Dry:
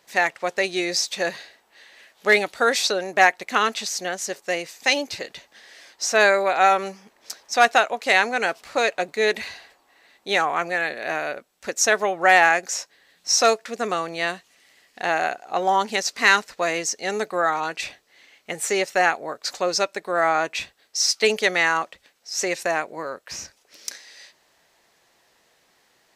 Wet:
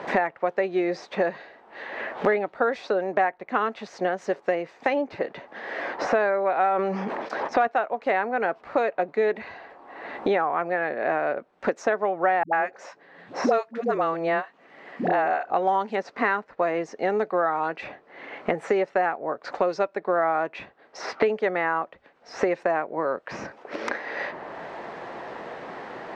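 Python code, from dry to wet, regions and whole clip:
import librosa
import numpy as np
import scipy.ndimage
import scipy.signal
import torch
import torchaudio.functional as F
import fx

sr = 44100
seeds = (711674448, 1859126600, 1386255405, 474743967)

y = fx.chain(x, sr, fx.high_shelf(hz=8900.0, db=-10.0),
    fx.sustainer(db_per_s=44.0), at=(6.65, 7.67))
y = fx.chain(y, sr, fx.highpass(hz=110.0, slope=24),
    fx.dispersion(late='highs', ms=99.0, hz=370.0), at=(12.43, 15.5))
y = scipy.signal.sosfilt(scipy.signal.butter(2, 1200.0, 'lowpass', fs=sr, output='sos'), y)
y = fx.low_shelf(y, sr, hz=91.0, db=-10.0)
y = fx.band_squash(y, sr, depth_pct=100)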